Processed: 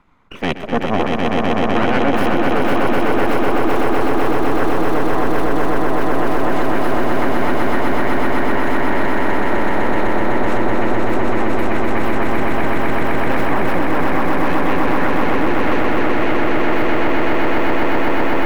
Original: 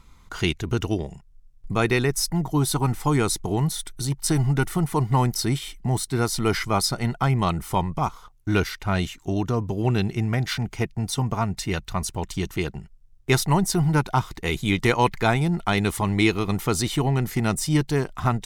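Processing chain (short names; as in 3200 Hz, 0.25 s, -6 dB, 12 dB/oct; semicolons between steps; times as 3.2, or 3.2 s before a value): ending faded out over 4.05 s; spectral noise reduction 15 dB; full-wave rectifier; reverse; compressor 6:1, threshold -28 dBFS, peak gain reduction 13.5 dB; reverse; three-band isolator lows -13 dB, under 190 Hz, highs -22 dB, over 2400 Hz; on a send: swelling echo 0.126 s, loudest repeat 8, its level -3 dB; on the sum: maximiser +24 dB; gain -5 dB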